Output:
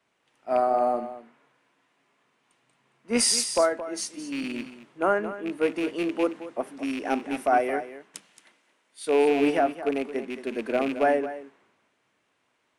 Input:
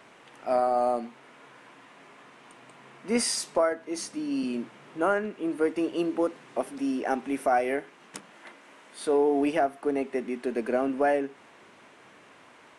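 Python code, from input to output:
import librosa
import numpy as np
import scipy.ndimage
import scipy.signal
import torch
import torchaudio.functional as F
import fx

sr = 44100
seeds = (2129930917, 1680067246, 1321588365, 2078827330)

y = fx.rattle_buzz(x, sr, strikes_db=-33.0, level_db=-24.0)
y = y + 10.0 ** (-9.5 / 20.0) * np.pad(y, (int(223 * sr / 1000.0), 0))[:len(y)]
y = fx.band_widen(y, sr, depth_pct=70)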